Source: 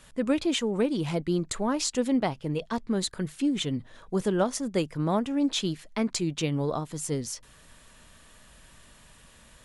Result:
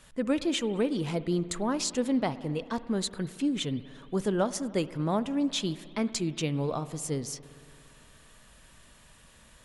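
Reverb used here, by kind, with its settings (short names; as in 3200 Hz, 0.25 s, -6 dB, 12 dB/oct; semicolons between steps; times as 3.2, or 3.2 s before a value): spring tank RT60 2.4 s, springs 57 ms, chirp 50 ms, DRR 15 dB; gain -2 dB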